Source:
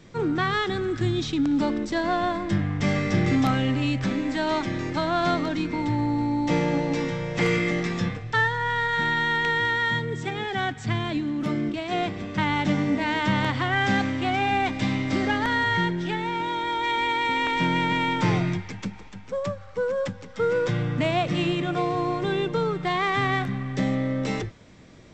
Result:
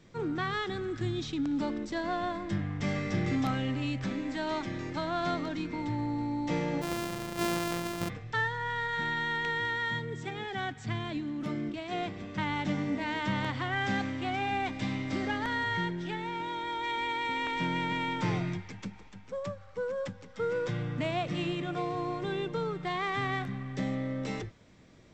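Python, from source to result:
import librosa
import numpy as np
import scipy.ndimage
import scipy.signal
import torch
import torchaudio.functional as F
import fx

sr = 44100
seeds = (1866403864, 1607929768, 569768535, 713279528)

y = fx.sample_sort(x, sr, block=128, at=(6.81, 8.08), fade=0.02)
y = y * 10.0 ** (-8.0 / 20.0)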